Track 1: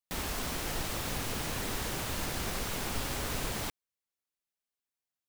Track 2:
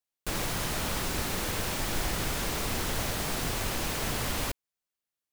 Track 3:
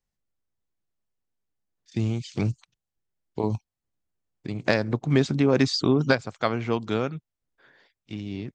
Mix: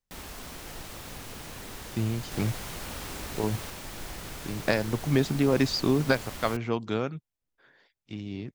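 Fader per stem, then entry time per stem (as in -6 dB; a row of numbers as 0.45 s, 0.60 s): -6.5 dB, -9.0 dB, -3.0 dB; 0.00 s, 2.05 s, 0.00 s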